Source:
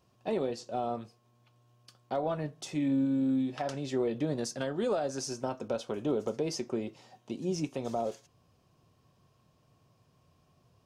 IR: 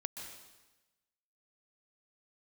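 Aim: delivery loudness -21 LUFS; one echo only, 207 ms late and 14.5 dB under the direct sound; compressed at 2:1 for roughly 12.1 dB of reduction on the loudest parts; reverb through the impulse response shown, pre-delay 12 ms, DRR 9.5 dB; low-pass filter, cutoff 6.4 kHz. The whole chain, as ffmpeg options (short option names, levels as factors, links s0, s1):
-filter_complex "[0:a]lowpass=6400,acompressor=threshold=0.00355:ratio=2,aecho=1:1:207:0.188,asplit=2[s0][s1];[1:a]atrim=start_sample=2205,adelay=12[s2];[s1][s2]afir=irnorm=-1:irlink=0,volume=0.376[s3];[s0][s3]amix=inputs=2:normalize=0,volume=14.1"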